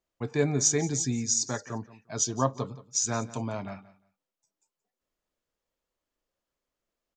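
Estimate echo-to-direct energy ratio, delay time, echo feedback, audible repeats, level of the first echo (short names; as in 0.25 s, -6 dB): -18.0 dB, 0.175 s, 19%, 2, -18.0 dB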